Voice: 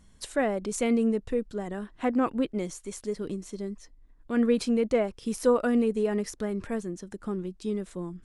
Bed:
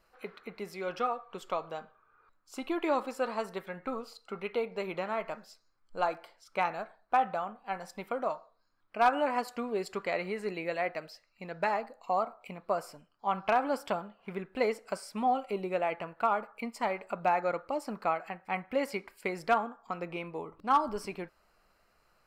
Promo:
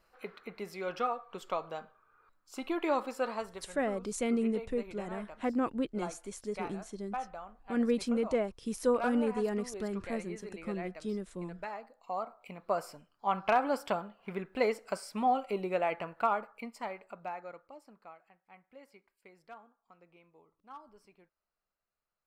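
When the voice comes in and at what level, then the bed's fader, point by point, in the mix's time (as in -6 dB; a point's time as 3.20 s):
3.40 s, -5.5 dB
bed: 3.30 s -1 dB
3.73 s -11 dB
11.77 s -11 dB
12.79 s 0 dB
16.19 s 0 dB
18.25 s -23.5 dB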